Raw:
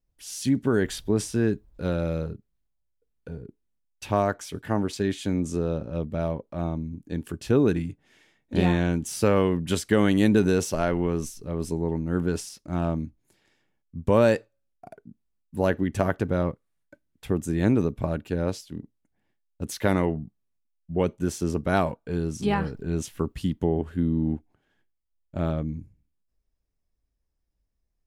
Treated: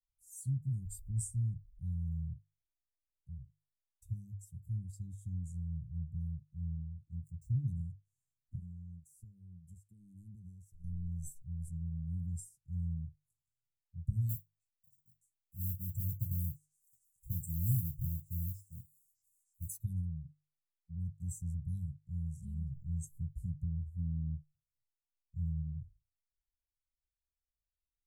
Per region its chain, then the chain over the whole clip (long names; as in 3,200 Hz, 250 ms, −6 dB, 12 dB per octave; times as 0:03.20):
0:06.48–0:07.68: running median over 3 samples + high-shelf EQ 9,300 Hz −8 dB + mains-hum notches 50/100/150 Hz
0:08.55–0:10.84: noise gate −26 dBFS, range −11 dB + parametric band 590 Hz +10 dB 2.4 octaves + downward compressor 2.5 to 1, threshold −34 dBFS
0:14.29–0:19.78: noise that follows the level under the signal 15 dB + echo through a band-pass that steps 307 ms, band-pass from 2,600 Hz, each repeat 0.7 octaves, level −9 dB
whole clip: Chebyshev band-stop filter 140–7,500 Hz, order 4; mains-hum notches 50/100/150 Hz; noise reduction from a noise print of the clip's start 14 dB; level −2.5 dB